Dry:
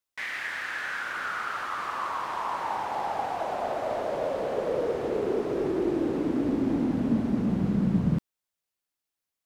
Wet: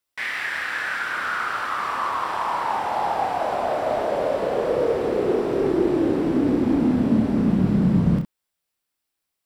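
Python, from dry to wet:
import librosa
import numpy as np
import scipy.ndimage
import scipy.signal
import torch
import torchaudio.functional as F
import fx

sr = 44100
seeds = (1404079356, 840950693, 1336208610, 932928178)

y = fx.notch(x, sr, hz=6500.0, q=9.7)
y = fx.room_early_taps(y, sr, ms=(28, 64), db=(-6.0, -9.0))
y = F.gain(torch.from_numpy(y), 5.0).numpy()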